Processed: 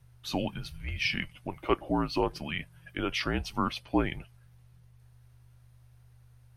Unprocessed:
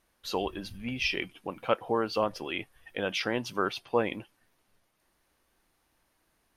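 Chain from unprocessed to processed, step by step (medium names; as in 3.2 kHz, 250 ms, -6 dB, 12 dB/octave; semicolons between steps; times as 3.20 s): hum 50 Hz, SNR 23 dB; frequency shift -170 Hz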